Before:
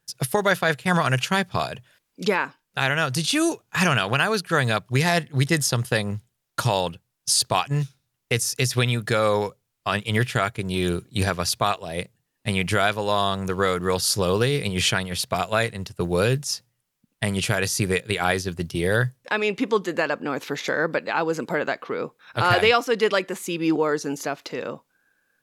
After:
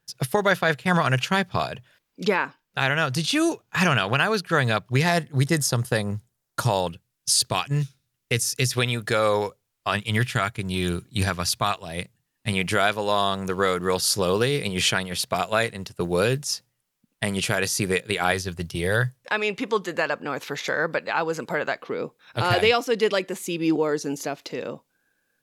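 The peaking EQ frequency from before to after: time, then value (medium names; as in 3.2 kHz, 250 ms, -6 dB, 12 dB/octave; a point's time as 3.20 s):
peaking EQ -5.5 dB 1.2 oct
9.7 kHz
from 5.12 s 2.8 kHz
from 6.87 s 800 Hz
from 8.74 s 150 Hz
from 9.95 s 490 Hz
from 12.53 s 93 Hz
from 18.32 s 280 Hz
from 21.78 s 1.3 kHz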